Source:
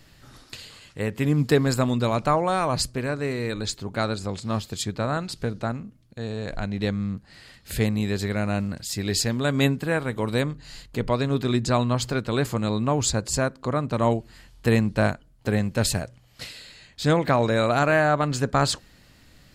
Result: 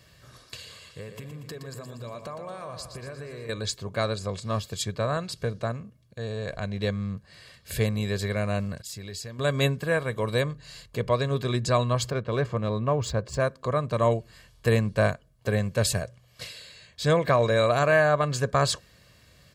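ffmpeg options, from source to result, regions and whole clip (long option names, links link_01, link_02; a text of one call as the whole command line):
ffmpeg -i in.wav -filter_complex "[0:a]asettb=1/sr,asplit=3[link_01][link_02][link_03];[link_01]atrim=end=0.554[link_04];[link_02]atrim=start=0.55:end=3.49,asetpts=PTS-STARTPTS,afade=type=in:duration=0.004:curve=qsin,afade=type=out:start_time=2.936:duration=0.004:curve=qsin,acompressor=threshold=-33dB:ratio=12:attack=3.2:release=140:knee=1:detection=peak,aecho=1:1:118|236|354|472|590|708|826:0.398|0.235|0.139|0.0818|0.0482|0.0285|0.0168,atrim=end_sample=129654[link_05];[link_03]atrim=start=3.486[link_06];[link_04][link_05]acrossfade=duration=0.004:curve1=hsin:curve2=qsin[link_07];[link_07][link_06]acrossfade=duration=0.004:curve1=qsin:curve2=hsin,asettb=1/sr,asplit=3[link_08][link_09][link_10];[link_08]atrim=end=8.824[link_11];[link_09]atrim=start=8.82:end=9.39,asetpts=PTS-STARTPTS,afade=type=in:duration=0.004:curve=qsin,afade=type=out:start_time=0.566:duration=0.004:curve=qsin,agate=range=-33dB:threshold=-32dB:ratio=3:release=100:detection=peak,acompressor=threshold=-34dB:ratio=4:attack=3.2:release=140:knee=1:detection=peak[link_12];[link_10]atrim=start=9.386[link_13];[link_11][link_12]acrossfade=duration=0.004:curve1=hsin:curve2=qsin[link_14];[link_14][link_13]acrossfade=duration=0.004:curve1=qsin:curve2=hsin,asettb=1/sr,asplit=3[link_15][link_16][link_17];[link_15]atrim=end=12.104[link_18];[link_16]atrim=start=12.1:end=13.4,asetpts=PTS-STARTPTS,afade=type=in:duration=0.004:curve=qsin,afade=type=out:start_time=1.296:duration=0.004:curve=qsin,highshelf=frequency=3200:gain=-9.5,adynamicsmooth=sensitivity=4.5:basefreq=4600[link_19];[link_17]atrim=start=13.396[link_20];[link_18][link_19]acrossfade=duration=0.004:curve1=hsin:curve2=qsin[link_21];[link_21][link_20]acrossfade=duration=0.004:curve1=qsin:curve2=hsin,highpass=70,aecho=1:1:1.8:0.58,volume=-2.5dB" out.wav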